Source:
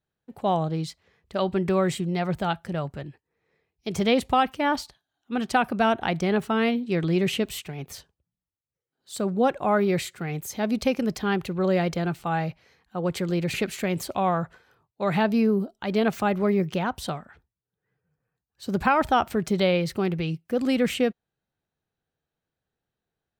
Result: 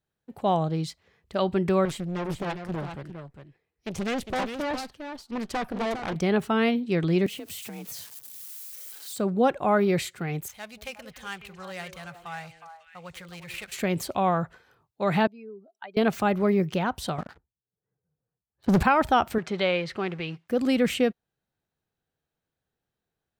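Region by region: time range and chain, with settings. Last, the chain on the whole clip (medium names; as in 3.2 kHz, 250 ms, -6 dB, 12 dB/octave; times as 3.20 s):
1.85–6.16 s: valve stage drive 25 dB, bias 0.7 + delay 405 ms -8 dB + loudspeaker Doppler distortion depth 0.74 ms
7.26–9.18 s: zero-crossing glitches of -32 dBFS + frequency shift +42 Hz + compression 10:1, threshold -34 dBFS
10.48–13.72 s: median filter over 9 samples + amplifier tone stack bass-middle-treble 10-0-10 + repeats whose band climbs or falls 182 ms, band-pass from 340 Hz, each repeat 1.4 oct, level -4 dB
15.27–15.97 s: spectral contrast enhancement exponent 1.8 + high-pass 1 kHz
17.18–18.83 s: level-controlled noise filter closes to 900 Hz, open at -26.5 dBFS + waveshaping leveller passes 3
19.38–20.48 s: companding laws mixed up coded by mu + low-pass 2.3 kHz + tilt EQ +3.5 dB/octave
whole clip: none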